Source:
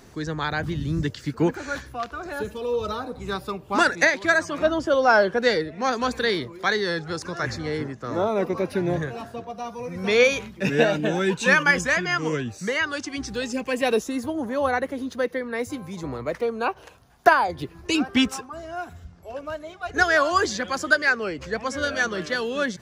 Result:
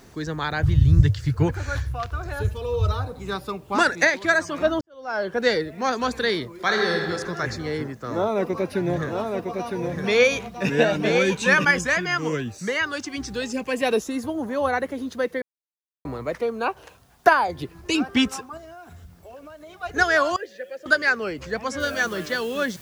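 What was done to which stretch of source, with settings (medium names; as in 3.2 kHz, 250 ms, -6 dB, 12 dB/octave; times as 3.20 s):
0.63–3.12 s: resonant low shelf 150 Hz +13.5 dB, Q 3
4.81–5.42 s: fade in quadratic
6.54–7.10 s: reverb throw, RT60 1.7 s, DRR 1 dB
7.92–11.65 s: delay 959 ms -4.5 dB
15.42–16.05 s: mute
18.57–19.79 s: compression, threshold -39 dBFS
20.36–20.86 s: vowel filter e
21.80 s: noise floor step -66 dB -48 dB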